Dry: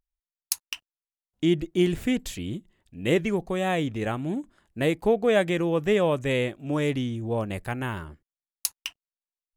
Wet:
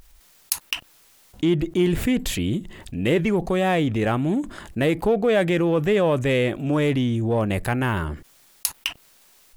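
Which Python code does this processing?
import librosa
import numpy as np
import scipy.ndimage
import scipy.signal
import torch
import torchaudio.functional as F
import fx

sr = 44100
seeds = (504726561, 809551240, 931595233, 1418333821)

p1 = fx.dynamic_eq(x, sr, hz=6300.0, q=1.0, threshold_db=-49.0, ratio=4.0, max_db=-5)
p2 = np.clip(10.0 ** (25.0 / 20.0) * p1, -1.0, 1.0) / 10.0 ** (25.0 / 20.0)
p3 = p1 + F.gain(torch.from_numpy(p2), -10.0).numpy()
y = fx.env_flatten(p3, sr, amount_pct=50)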